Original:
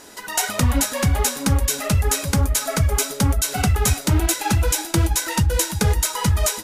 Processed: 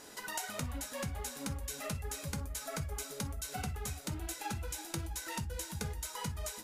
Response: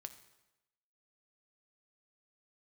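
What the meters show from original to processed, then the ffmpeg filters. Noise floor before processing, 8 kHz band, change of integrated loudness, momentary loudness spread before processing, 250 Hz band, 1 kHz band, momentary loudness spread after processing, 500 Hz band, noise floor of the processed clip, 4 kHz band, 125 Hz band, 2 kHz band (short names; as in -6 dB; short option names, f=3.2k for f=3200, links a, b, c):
-35 dBFS, -19.0 dB, -19.5 dB, 1 LU, -19.5 dB, -17.0 dB, 1 LU, -18.0 dB, -48 dBFS, -18.0 dB, -21.0 dB, -17.0 dB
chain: -filter_complex "[0:a]acompressor=threshold=-28dB:ratio=6[a];[1:a]atrim=start_sample=2205,atrim=end_sample=3528,asetrate=52920,aresample=44100[b];[a][b]afir=irnorm=-1:irlink=0,volume=-1.5dB"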